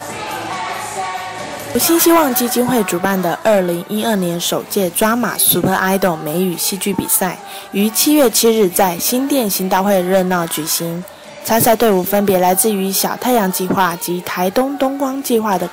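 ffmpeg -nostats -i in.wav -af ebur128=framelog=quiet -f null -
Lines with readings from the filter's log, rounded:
Integrated loudness:
  I:         -14.9 LUFS
  Threshold: -25.1 LUFS
Loudness range:
  LRA:         1.7 LU
  Threshold: -34.8 LUFS
  LRA low:   -15.6 LUFS
  LRA high:  -13.8 LUFS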